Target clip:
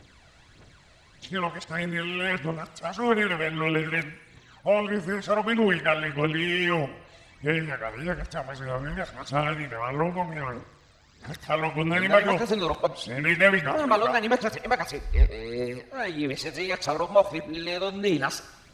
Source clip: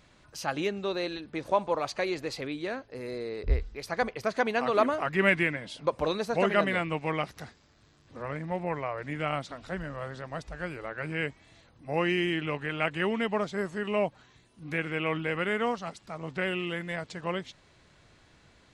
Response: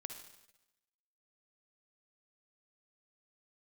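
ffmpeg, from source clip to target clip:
-filter_complex "[0:a]areverse,aphaser=in_gain=1:out_gain=1:delay=1.7:decay=0.56:speed=1.6:type=triangular,asplit=2[a][b];[1:a]atrim=start_sample=2205,lowshelf=f=320:g=-11[c];[b][c]afir=irnorm=-1:irlink=0,volume=-0.5dB[d];[a][d]amix=inputs=2:normalize=0"

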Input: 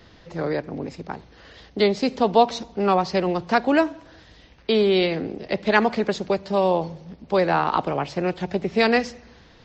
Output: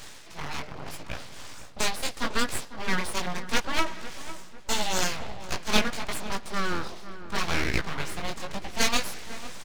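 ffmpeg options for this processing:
-filter_complex "[0:a]tiltshelf=f=970:g=-8,bandreject=f=75.26:t=h:w=4,bandreject=f=150.52:t=h:w=4,bandreject=f=225.78:t=h:w=4,bandreject=f=301.04:t=h:w=4,bandreject=f=376.3:t=h:w=4,areverse,acompressor=mode=upward:threshold=-25dB:ratio=2.5,areverse,flanger=delay=15.5:depth=7.3:speed=0.78,aeval=exprs='abs(val(0))':c=same,asplit=2[a][b];[b]adelay=500,lowpass=f=1.6k:p=1,volume=-13dB,asplit=2[c][d];[d]adelay=500,lowpass=f=1.6k:p=1,volume=0.46,asplit=2[e][f];[f]adelay=500,lowpass=f=1.6k:p=1,volume=0.46,asplit=2[g][h];[h]adelay=500,lowpass=f=1.6k:p=1,volume=0.46,asplit=2[i][j];[j]adelay=500,lowpass=f=1.6k:p=1,volume=0.46[k];[c][e][g][i][k]amix=inputs=5:normalize=0[l];[a][l]amix=inputs=2:normalize=0"

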